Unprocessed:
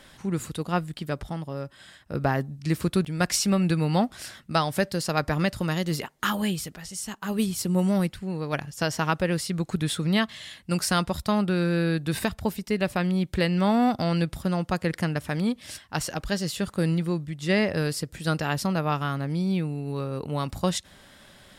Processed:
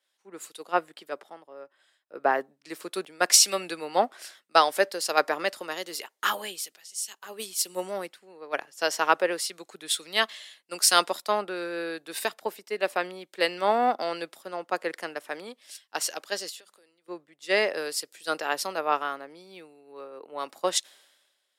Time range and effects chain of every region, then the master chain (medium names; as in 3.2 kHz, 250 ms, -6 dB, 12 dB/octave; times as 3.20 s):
16.49–17.08 s: peaking EQ 65 Hz -15 dB 1.9 oct + compression 20:1, threshold -35 dBFS + hum notches 50/100/150/200/250 Hz
whole clip: high-pass 380 Hz 24 dB/octave; three bands expanded up and down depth 100%